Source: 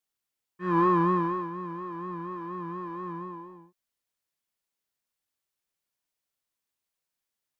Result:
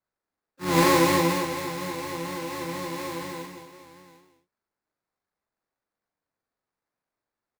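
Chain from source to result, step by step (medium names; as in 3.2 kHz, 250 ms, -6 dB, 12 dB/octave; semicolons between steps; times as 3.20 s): harmony voices -12 st -1 dB, -4 st -5 dB, +7 st -14 dB; three-band isolator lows -13 dB, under 180 Hz, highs -13 dB, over 2.6 kHz; sample-rate reducer 3.1 kHz, jitter 20%; on a send: multi-tap echo 42/217/747 ms -5/-9.5/-14.5 dB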